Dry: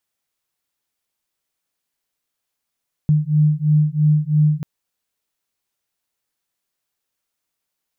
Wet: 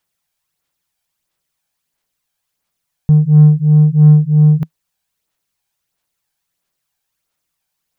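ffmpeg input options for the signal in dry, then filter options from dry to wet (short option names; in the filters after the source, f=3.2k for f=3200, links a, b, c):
-f lavfi -i "aevalsrc='0.158*(sin(2*PI*150*t)+sin(2*PI*153*t))':d=1.54:s=44100"
-filter_complex "[0:a]equalizer=f=160:t=o:w=0.33:g=4,equalizer=f=250:t=o:w=0.33:g=-5,equalizer=f=400:t=o:w=0.33:g=-3,aphaser=in_gain=1:out_gain=1:delay=1.3:decay=0.41:speed=1.5:type=sinusoidal,asplit=2[a][b];[b]asoftclip=type=tanh:threshold=-15.5dB,volume=-5dB[c];[a][c]amix=inputs=2:normalize=0"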